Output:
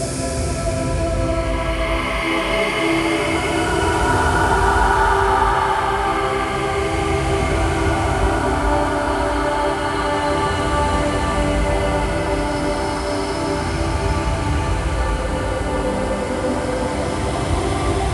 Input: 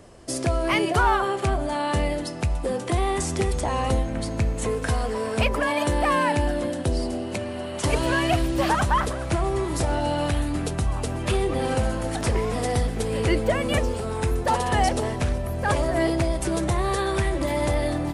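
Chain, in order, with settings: echo that smears into a reverb 619 ms, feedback 66%, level -6 dB; Paulstretch 6.9×, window 0.50 s, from 0.36 s; trim +3.5 dB

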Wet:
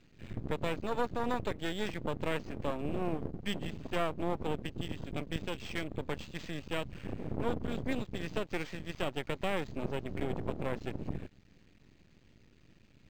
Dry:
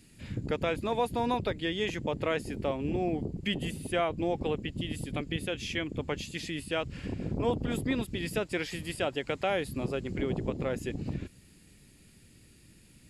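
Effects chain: distance through air 71 m; half-wave rectifier; decimation joined by straight lines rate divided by 4×

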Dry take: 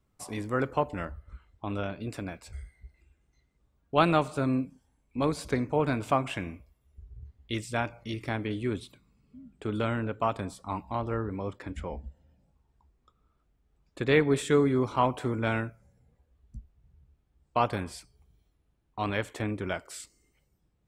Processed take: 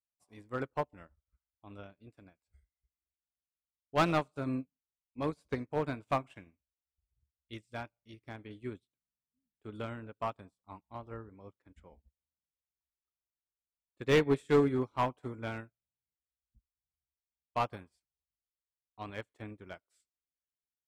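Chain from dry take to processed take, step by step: hard clipper -18.5 dBFS, distortion -15 dB; upward expansion 2.5:1, over -48 dBFS

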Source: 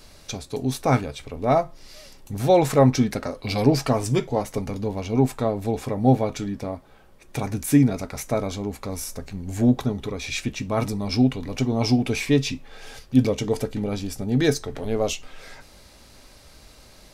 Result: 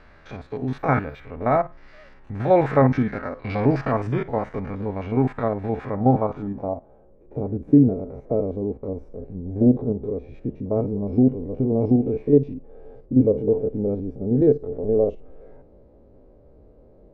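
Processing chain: spectrogram pixelated in time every 50 ms; 0.77–1.20 s: whistle 12 kHz -39 dBFS; low-pass sweep 1.7 kHz -> 470 Hz, 5.84–7.20 s

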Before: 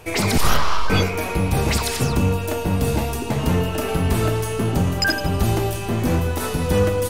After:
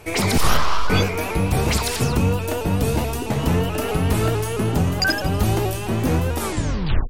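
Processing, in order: tape stop on the ending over 0.73 s; vibrato with a chosen wave saw up 4.6 Hz, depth 100 cents

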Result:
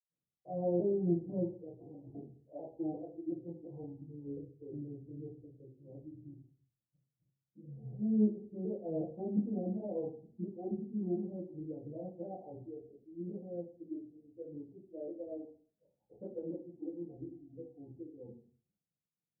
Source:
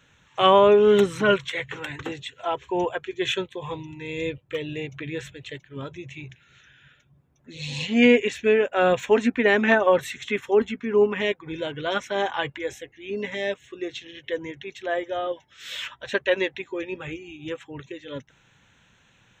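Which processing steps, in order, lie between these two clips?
sawtooth pitch modulation -3 st, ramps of 357 ms; steep low-pass 760 Hz 72 dB/octave; dynamic bell 400 Hz, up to -4 dB, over -28 dBFS, Q 1; expander -51 dBFS; reverberation RT60 0.45 s, pre-delay 77 ms, DRR -60 dB

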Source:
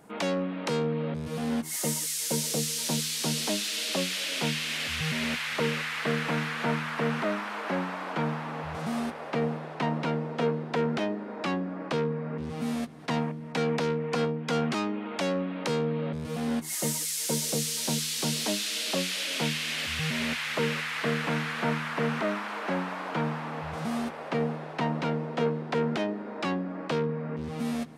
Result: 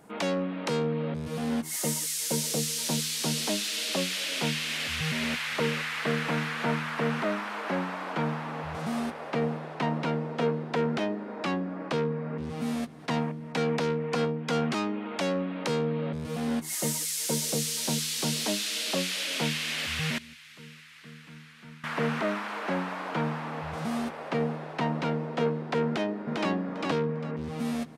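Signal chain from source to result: 20.18–21.84 s: amplifier tone stack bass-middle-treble 6-0-2; 25.87–26.51 s: echo throw 400 ms, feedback 20%, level -2.5 dB

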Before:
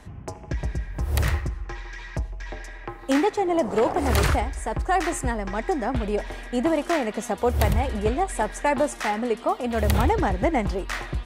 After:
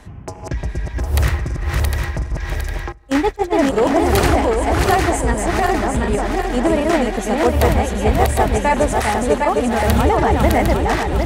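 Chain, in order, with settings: backward echo that repeats 378 ms, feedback 66%, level -2 dB; 2.92–3.54 s: gate -20 dBFS, range -20 dB; trim +4.5 dB

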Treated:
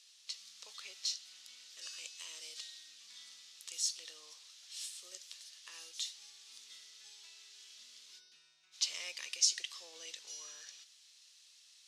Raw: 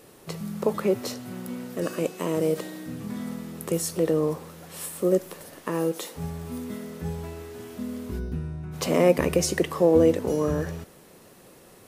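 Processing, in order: Butterworth band-pass 4.7 kHz, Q 1.4; trim +2 dB

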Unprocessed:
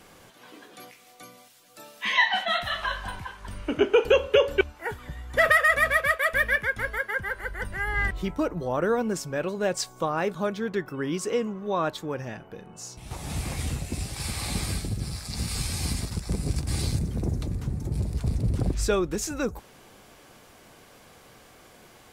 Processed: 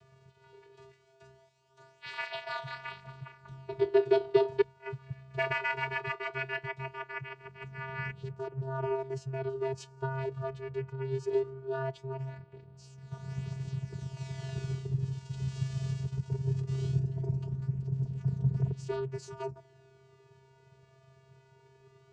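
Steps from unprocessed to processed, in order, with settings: vocoder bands 8, square 133 Hz; flange 0.19 Hz, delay 1.6 ms, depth 2.6 ms, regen +39%

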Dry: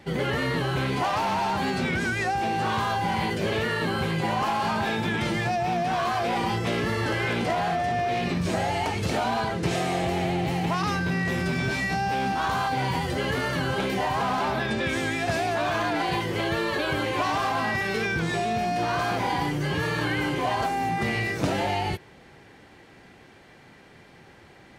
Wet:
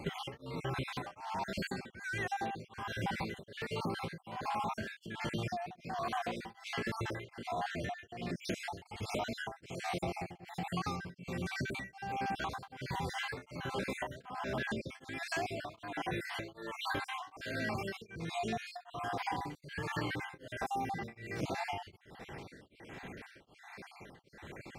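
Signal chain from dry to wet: random holes in the spectrogram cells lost 49%; compression 6:1, threshold -39 dBFS, peak gain reduction 17 dB; tremolo of two beating tones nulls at 1.3 Hz; trim +5 dB

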